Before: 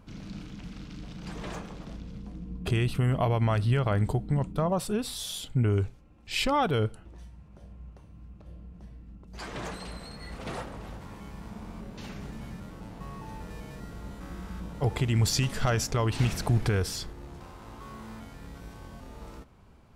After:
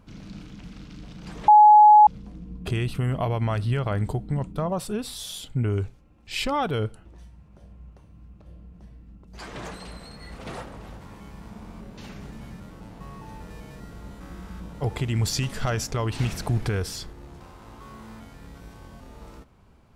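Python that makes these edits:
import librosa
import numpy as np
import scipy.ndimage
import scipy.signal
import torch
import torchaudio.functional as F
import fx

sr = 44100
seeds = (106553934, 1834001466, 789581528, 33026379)

y = fx.edit(x, sr, fx.bleep(start_s=1.48, length_s=0.59, hz=844.0, db=-8.5), tone=tone)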